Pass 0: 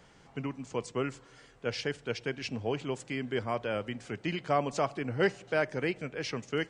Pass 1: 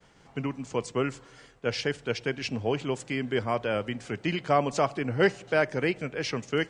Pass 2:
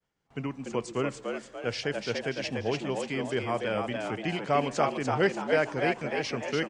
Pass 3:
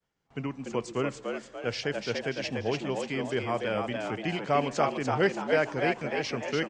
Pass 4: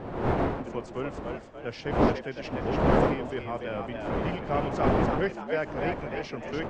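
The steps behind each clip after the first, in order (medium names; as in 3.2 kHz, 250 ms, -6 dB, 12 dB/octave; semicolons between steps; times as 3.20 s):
expander -54 dBFS; trim +4.5 dB
gate with hold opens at -44 dBFS; frequency-shifting echo 291 ms, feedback 45%, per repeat +90 Hz, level -4.5 dB; trim -2.5 dB
low-pass 8.2 kHz 24 dB/octave
wind noise 640 Hz -26 dBFS; treble shelf 4.5 kHz -11.5 dB; trim -3.5 dB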